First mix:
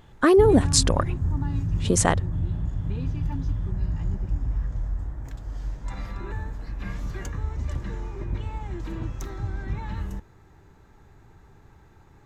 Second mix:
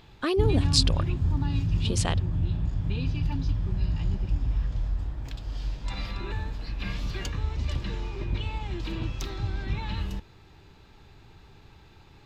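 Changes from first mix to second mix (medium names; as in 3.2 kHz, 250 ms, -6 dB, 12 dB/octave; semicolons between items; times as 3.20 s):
speech -10.0 dB; master: add high-order bell 3.5 kHz +12 dB 1.3 oct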